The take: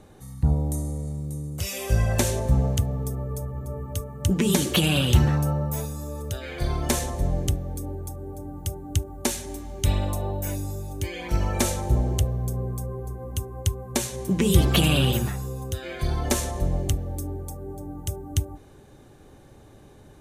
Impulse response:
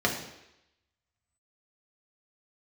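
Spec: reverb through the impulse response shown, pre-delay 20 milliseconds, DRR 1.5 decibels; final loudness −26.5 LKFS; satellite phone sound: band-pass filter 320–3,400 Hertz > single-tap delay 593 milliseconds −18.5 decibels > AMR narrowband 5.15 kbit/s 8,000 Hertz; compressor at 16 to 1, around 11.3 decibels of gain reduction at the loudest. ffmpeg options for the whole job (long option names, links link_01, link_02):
-filter_complex "[0:a]acompressor=threshold=-22dB:ratio=16,asplit=2[link_01][link_02];[1:a]atrim=start_sample=2205,adelay=20[link_03];[link_02][link_03]afir=irnorm=-1:irlink=0,volume=-14dB[link_04];[link_01][link_04]amix=inputs=2:normalize=0,highpass=320,lowpass=3400,aecho=1:1:593:0.119,volume=10.5dB" -ar 8000 -c:a libopencore_amrnb -b:a 5150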